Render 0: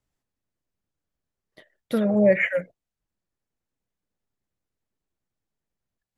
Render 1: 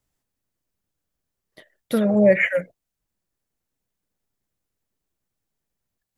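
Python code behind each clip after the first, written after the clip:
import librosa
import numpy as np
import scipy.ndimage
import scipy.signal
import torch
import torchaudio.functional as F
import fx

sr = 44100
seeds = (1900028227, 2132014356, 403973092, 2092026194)

y = fx.high_shelf(x, sr, hz=7100.0, db=7.5)
y = y * 10.0 ** (2.5 / 20.0)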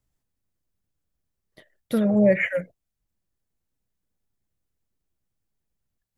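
y = fx.low_shelf(x, sr, hz=180.0, db=9.0)
y = y * 10.0 ** (-4.5 / 20.0)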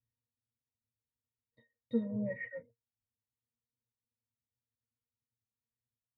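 y = fx.octave_resonator(x, sr, note='A#', decay_s=0.12)
y = y * 10.0 ** (-4.0 / 20.0)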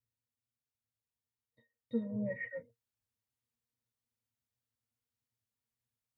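y = fx.rider(x, sr, range_db=10, speed_s=0.5)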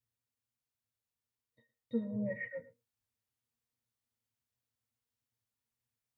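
y = x + 10.0 ** (-18.5 / 20.0) * np.pad(x, (int(111 * sr / 1000.0), 0))[:len(x)]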